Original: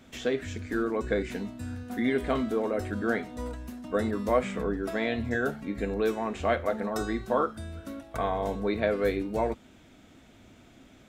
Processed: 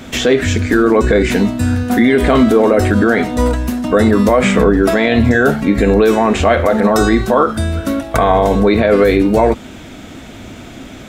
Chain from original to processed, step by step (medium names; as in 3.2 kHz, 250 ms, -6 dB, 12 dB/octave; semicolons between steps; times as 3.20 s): loudness maximiser +23 dB; trim -1 dB